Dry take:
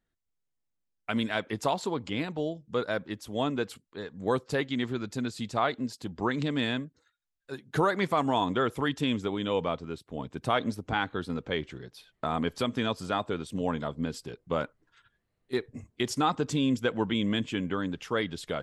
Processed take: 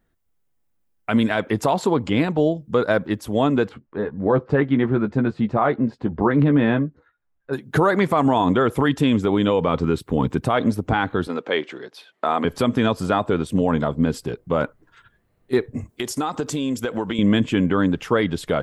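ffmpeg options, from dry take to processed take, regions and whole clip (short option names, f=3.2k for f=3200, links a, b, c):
-filter_complex "[0:a]asettb=1/sr,asplit=3[a][b][c];[a]atrim=end=3.694[d];[b]atrim=start=3.69:end=7.53,asetpts=PTS-STARTPTS,afade=t=in:d=0.004:c=qsin,afade=t=out:st=3.836:d=0.004:c=qsin,lowpass=1.8k,asplit=2[e][f];[f]adelay=14,volume=-7.5dB[g];[e][g]amix=inputs=2:normalize=0,atrim=end_sample=169344[h];[c]atrim=start=7.526[i];[d][h]acrossfade=d=0.004:c1=hsin:c2=qsin[j];[j][i]acrossfade=d=0.004:c1=qsin:c2=hsin,asettb=1/sr,asplit=3[k][l][m];[k]atrim=end=9.684[n];[l]atrim=start=9.68:end=10.41,asetpts=PTS-STARTPTS,afade=t=in:d=0.004:c=qsin,afade=t=out:st=0.726:d=0.004:c=qsin,equalizer=f=640:t=o:w=0.26:g=-11,acontrast=65[o];[m]atrim=start=10.406[p];[n][o]acrossfade=d=0.004:c1=hsin:c2=qsin[q];[q][p]acrossfade=d=0.004:c1=qsin:c2=hsin,asettb=1/sr,asplit=3[r][s][t];[r]atrim=end=11.274[u];[s]atrim=start=11.27:end=12.45,asetpts=PTS-STARTPTS,afade=t=in:d=0.004:c=qsin,afade=t=out:st=1.176:d=0.004:c=qsin,highpass=270,lowpass=4.2k,aemphasis=mode=production:type=bsi[v];[t]atrim=start=12.446[w];[u][v]acrossfade=d=0.004:c1=hsin:c2=qsin[x];[x][w]acrossfade=d=0.004:c1=qsin:c2=hsin,asettb=1/sr,asplit=3[y][z][aa];[y]atrim=end=15.894[ab];[z]atrim=start=15.89:end=17.19,asetpts=PTS-STARTPTS,afade=t=in:d=0.004:c=qsin,afade=t=out:st=1.296:d=0.004:c=qsin,bass=f=250:g=-7,treble=f=4k:g=8,acompressor=threshold=-32dB:ratio=12:attack=3.2:release=140:knee=1:detection=peak[ac];[aa]atrim=start=17.186[ad];[ab][ac]acrossfade=d=0.004:c1=hsin:c2=qsin[ae];[ae][ad]acrossfade=d=0.004:c1=qsin:c2=hsin,equalizer=f=5k:t=o:w=2.4:g=-8.5,alimiter=level_in=21dB:limit=-1dB:release=50:level=0:latency=1,volume=-7.5dB"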